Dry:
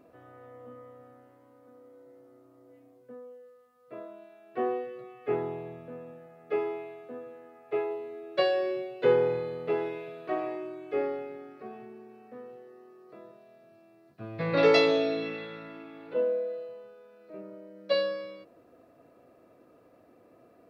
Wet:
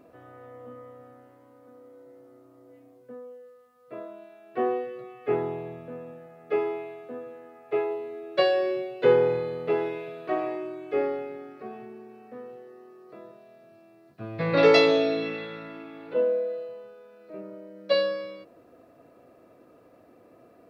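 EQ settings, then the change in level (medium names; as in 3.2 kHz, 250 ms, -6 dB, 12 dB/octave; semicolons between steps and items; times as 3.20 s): flat; +3.5 dB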